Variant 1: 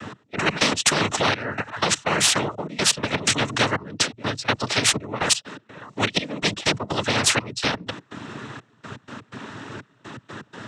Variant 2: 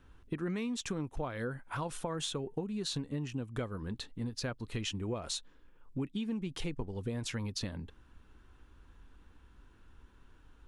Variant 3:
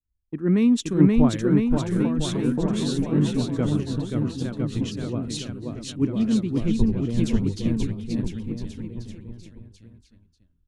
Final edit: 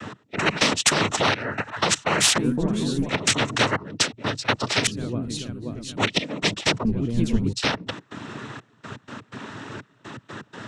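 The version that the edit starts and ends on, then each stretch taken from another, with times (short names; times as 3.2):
1
2.38–3.09 from 3
4.87–5.97 from 3
6.85–7.53 from 3
not used: 2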